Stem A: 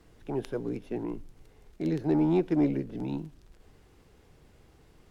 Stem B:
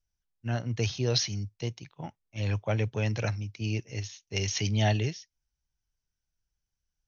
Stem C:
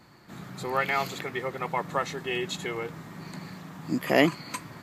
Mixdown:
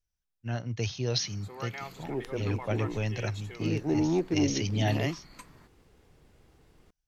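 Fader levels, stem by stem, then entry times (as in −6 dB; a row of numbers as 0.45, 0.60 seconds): −2.0, −2.5, −13.5 decibels; 1.80, 0.00, 0.85 seconds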